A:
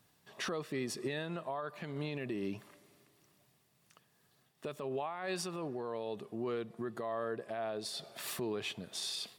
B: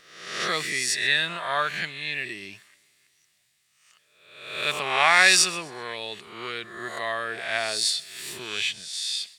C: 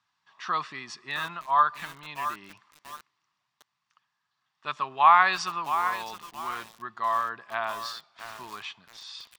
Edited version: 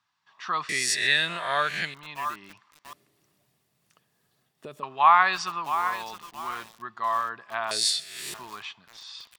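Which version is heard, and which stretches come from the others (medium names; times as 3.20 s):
C
0.69–1.94 s: from B
2.93–4.83 s: from A
7.71–8.34 s: from B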